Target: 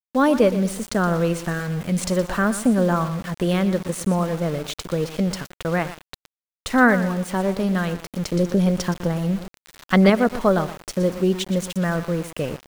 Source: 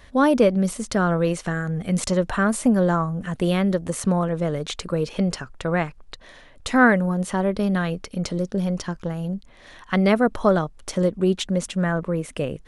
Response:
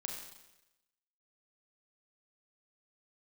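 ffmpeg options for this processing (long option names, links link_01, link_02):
-filter_complex "[0:a]aecho=1:1:119|238|357:0.224|0.0784|0.0274,asettb=1/sr,asplit=3[link_01][link_02][link_03];[link_01]atrim=end=8.324[link_04];[link_02]atrim=start=8.32:end=10.1,asetpts=PTS-STARTPTS,afade=type=in:duration=0.004:curve=qsin,afade=type=out:start_time=1.776:duration=0.004:curve=qsin,acontrast=29[link_05];[link_03]atrim=start=10.096[link_06];[link_04][link_05]acrossfade=duration=0.004:curve1=hsin:curve2=qsin[link_07];[link_07][link_06]acrossfade=duration=0.004:curve1=qsin:curve2=hsin,aeval=exprs='val(0)*gte(abs(val(0)),0.0251)':channel_layout=same"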